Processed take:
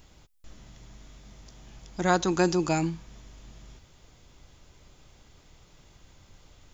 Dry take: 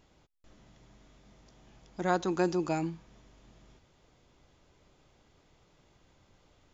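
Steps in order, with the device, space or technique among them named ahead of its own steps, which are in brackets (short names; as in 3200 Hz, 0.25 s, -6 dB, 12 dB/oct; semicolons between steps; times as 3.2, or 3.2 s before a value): smiley-face EQ (low shelf 81 Hz +7.5 dB; bell 450 Hz -3.5 dB 2.6 oct; high shelf 5800 Hz +9 dB); gain +7 dB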